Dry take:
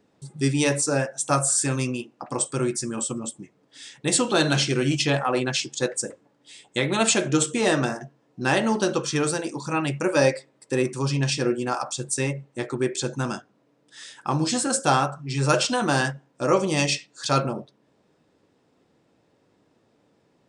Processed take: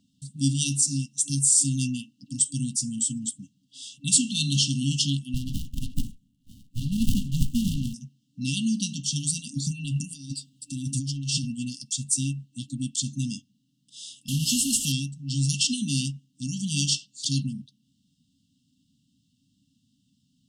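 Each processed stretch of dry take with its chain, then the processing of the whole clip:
0:05.34–0:07.94: Butterworth band-reject 4,700 Hz, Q 1.6 + high-shelf EQ 3,000 Hz +7.5 dB + windowed peak hold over 65 samples
0:09.56–0:11.51: comb filter 7 ms, depth 49% + compressor whose output falls as the input rises −28 dBFS
0:14.28–0:14.92: linear delta modulator 64 kbit/s, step −24.5 dBFS + parametric band 2,800 Hz +5.5 dB 0.48 octaves
whole clip: high-shelf EQ 5,400 Hz +4.5 dB; brick-wall band-stop 290–2,700 Hz; dynamic equaliser 4,000 Hz, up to −3 dB, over −45 dBFS, Q 7.4

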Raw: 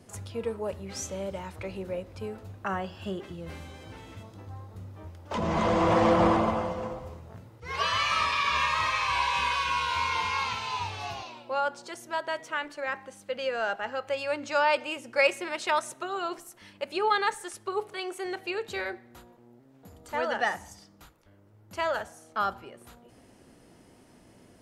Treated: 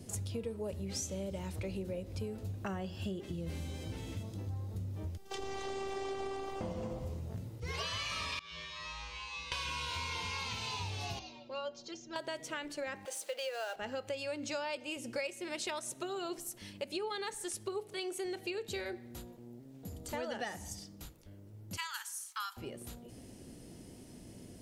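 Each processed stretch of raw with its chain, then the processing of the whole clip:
0:05.17–0:06.61: low-shelf EQ 470 Hz −9.5 dB + phases set to zero 389 Hz
0:08.39–0:09.52: low-pass filter 6,000 Hz + tuned comb filter 55 Hz, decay 0.89 s, harmonics odd, mix 100%
0:11.19–0:12.16: Butterworth low-pass 6,800 Hz 72 dB per octave + stiff-string resonator 67 Hz, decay 0.25 s, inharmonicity 0.03
0:13.05–0:13.76: mu-law and A-law mismatch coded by mu + high-pass filter 500 Hz 24 dB per octave
0:21.77–0:22.57: Butterworth high-pass 930 Hz 72 dB per octave + high-shelf EQ 7,300 Hz +10 dB
whole clip: parametric band 1,200 Hz −14 dB 2.2 octaves; downward compressor 6 to 1, threshold −43 dBFS; level +7 dB

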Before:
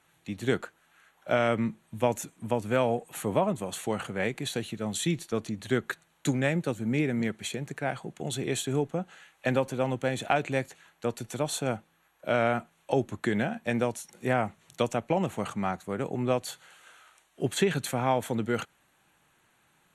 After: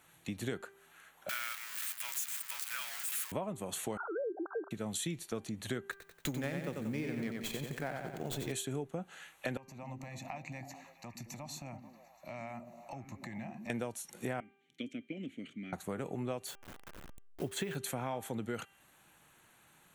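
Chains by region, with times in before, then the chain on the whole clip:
0:01.29–0:03.32: converter with a step at zero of −27 dBFS + inverse Chebyshev high-pass filter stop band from 310 Hz, stop band 70 dB + log-companded quantiser 4 bits
0:03.97–0:04.71: three sine waves on the formant tracks + linear-phase brick-wall band-pass 300–1,600 Hz + envelope flattener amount 50%
0:05.91–0:08.52: mu-law and A-law mismatch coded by A + repeating echo 91 ms, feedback 44%, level −5 dB + windowed peak hold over 3 samples
0:09.57–0:13.70: downward compressor 2.5 to 1, threshold −45 dBFS + phaser with its sweep stopped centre 2,200 Hz, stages 8 + echo through a band-pass that steps 109 ms, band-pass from 200 Hz, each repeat 0.7 octaves, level −3 dB
0:14.40–0:15.73: formant filter i + parametric band 1,100 Hz −9 dB 0.59 octaves
0:16.47–0:17.76: hold until the input has moved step −43.5 dBFS + high-shelf EQ 5,900 Hz −4.5 dB
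whole clip: high-shelf EQ 12,000 Hz +12 dB; hum removal 394.7 Hz, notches 8; downward compressor 4 to 1, threshold −38 dBFS; level +1.5 dB

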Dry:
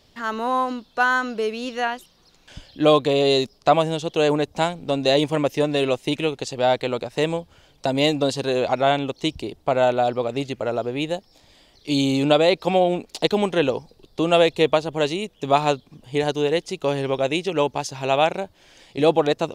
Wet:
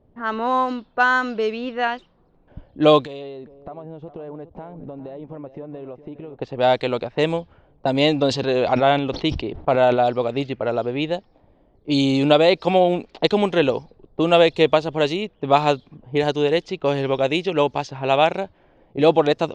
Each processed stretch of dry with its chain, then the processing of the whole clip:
0:03.02–0:06.36: one scale factor per block 7 bits + downward compressor 10 to 1, threshold −33 dBFS + single-tap delay 412 ms −13 dB
0:08.04–0:10.06: Bessel low-pass filter 5,300 Hz + level that may fall only so fast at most 89 dB per second
whole clip: low-pass filter 5,200 Hz 12 dB per octave; low-pass that shuts in the quiet parts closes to 580 Hz, open at −17.5 dBFS; level +2 dB

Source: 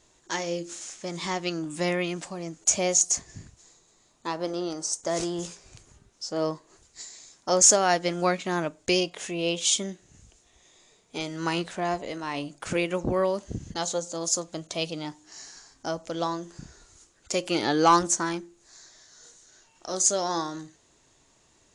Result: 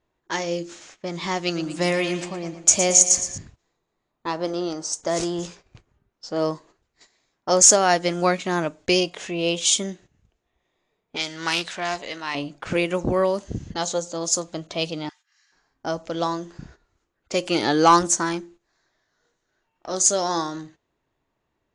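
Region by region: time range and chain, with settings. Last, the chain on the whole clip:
0:01.37–0:03.38: high-shelf EQ 5,400 Hz +5 dB + repeating echo 115 ms, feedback 47%, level −10.5 dB
0:11.16–0:12.35: tilt shelving filter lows −8 dB, about 1,200 Hz + highs frequency-modulated by the lows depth 0.15 ms
0:15.09–0:15.52: high-pass filter 1,400 Hz 24 dB per octave + comb filter 2.5 ms, depth 39% + upward compression, threshold −56 dBFS
whole clip: low-pass that shuts in the quiet parts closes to 2,200 Hz, open at −22 dBFS; noise gate −50 dBFS, range −14 dB; level +4 dB

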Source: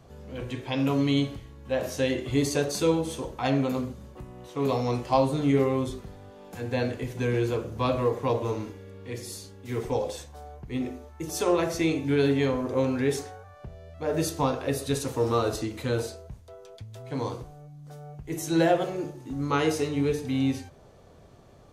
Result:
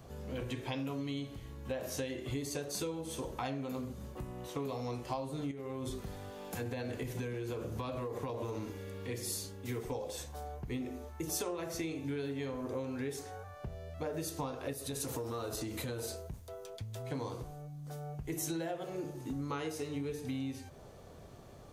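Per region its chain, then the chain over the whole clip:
0:05.51–0:09.07: downward compressor 12 to 1, threshold −28 dBFS + one half of a high-frequency compander encoder only
0:14.73–0:16.70: high-shelf EQ 9,700 Hz +6 dB + downward compressor 2.5 to 1, threshold −33 dBFS + saturating transformer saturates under 280 Hz
whole clip: downward compressor 10 to 1, threshold −35 dBFS; high-shelf EQ 11,000 Hz +10 dB

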